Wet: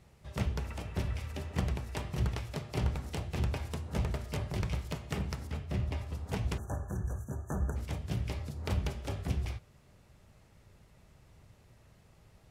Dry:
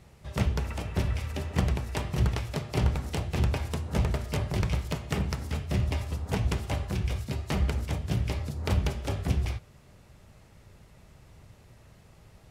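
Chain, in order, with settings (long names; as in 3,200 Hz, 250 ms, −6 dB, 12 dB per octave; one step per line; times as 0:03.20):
0:05.47–0:06.15: high-shelf EQ 3,900 Hz −7 dB
0:06.58–0:07.76: time-frequency box erased 1,800–5,800 Hz
level −6 dB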